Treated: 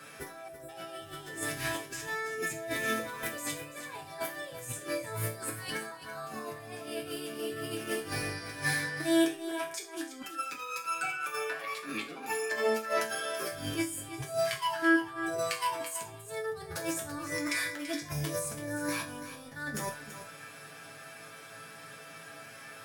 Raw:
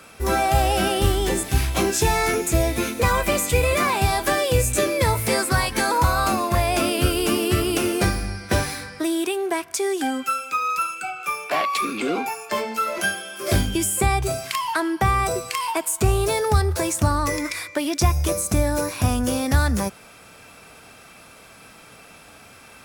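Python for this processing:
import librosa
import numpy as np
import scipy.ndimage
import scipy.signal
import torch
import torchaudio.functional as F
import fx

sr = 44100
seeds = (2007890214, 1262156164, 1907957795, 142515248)

y = scipy.signal.sosfilt(scipy.signal.butter(2, 110.0, 'highpass', fs=sr, output='sos'), x)
y = y + 0.6 * np.pad(y, (int(7.4 * sr / 1000.0), 0))[:len(y)]
y = fx.over_compress(y, sr, threshold_db=-27.0, ratio=-0.5)
y = fx.peak_eq(y, sr, hz=1700.0, db=8.5, octaves=0.24)
y = fx.resonator_bank(y, sr, root=45, chord='sus4', decay_s=0.33)
y = fx.spec_erase(y, sr, start_s=0.48, length_s=0.21, low_hz=700.0, high_hz=7200.0)
y = y + 10.0 ** (-11.5 / 20.0) * np.pad(y, (int(334 * sr / 1000.0), 0))[:len(y)]
y = y * 10.0 ** (3.5 / 20.0)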